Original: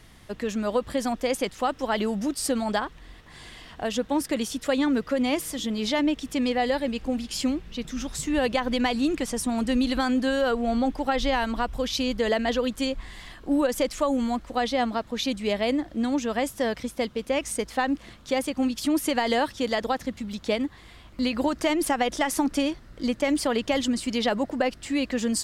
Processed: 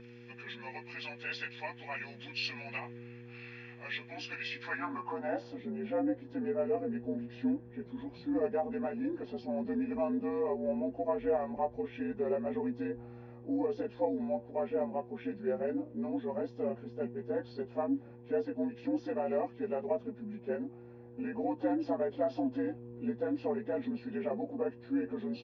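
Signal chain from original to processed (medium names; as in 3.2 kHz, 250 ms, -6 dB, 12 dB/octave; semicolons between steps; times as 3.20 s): frequency axis rescaled in octaves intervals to 81%; band-pass sweep 2.4 kHz -> 430 Hz, 4.45–5.62 s; comb 1.2 ms, depth 60%; mains buzz 120 Hz, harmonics 4, -52 dBFS -1 dB/octave; flange 0.1 Hz, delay 4.6 ms, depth 6.4 ms, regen +65%; trim +5 dB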